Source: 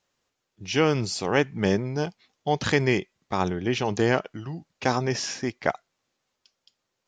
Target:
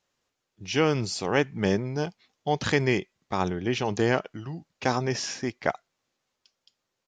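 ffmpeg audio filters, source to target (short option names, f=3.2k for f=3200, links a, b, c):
-af "aresample=32000,aresample=44100,volume=-1.5dB"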